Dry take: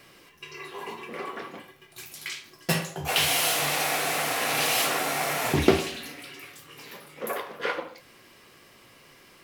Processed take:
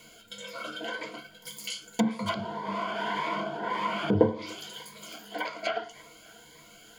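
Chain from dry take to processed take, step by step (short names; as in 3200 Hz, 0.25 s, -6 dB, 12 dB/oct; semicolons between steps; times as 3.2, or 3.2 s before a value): narrowing echo 0.399 s, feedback 73%, band-pass 920 Hz, level -21.5 dB; treble ducked by the level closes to 570 Hz, closed at -21 dBFS; speed mistake 33 rpm record played at 45 rpm; ripple EQ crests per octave 1.8, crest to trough 12 dB; cascading phaser rising 1.8 Hz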